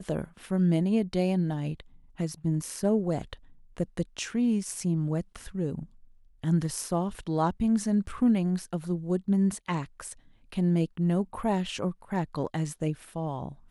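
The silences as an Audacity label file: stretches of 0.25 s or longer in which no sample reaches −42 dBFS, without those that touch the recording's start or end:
1.810000	2.180000	silence
3.350000	3.770000	silence
5.850000	6.440000	silence
10.130000	10.520000	silence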